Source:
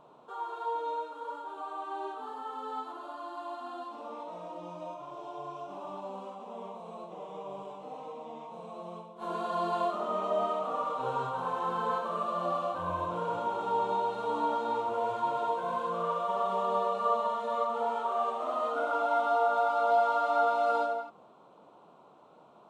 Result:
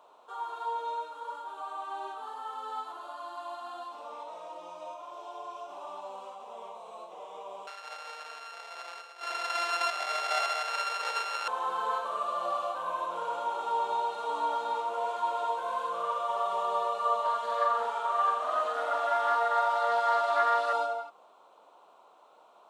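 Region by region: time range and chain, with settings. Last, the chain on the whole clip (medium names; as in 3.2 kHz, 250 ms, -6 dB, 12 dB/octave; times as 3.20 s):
7.67–11.48 s: sorted samples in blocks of 32 samples + band-pass 510–4500 Hz
17.23–20.73 s: doubling 12 ms -11 dB + flutter echo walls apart 7.7 m, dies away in 0.51 s + loudspeaker Doppler distortion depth 0.11 ms
whole clip: high-pass 600 Hz 12 dB/octave; treble shelf 4.5 kHz +6 dB; trim +1 dB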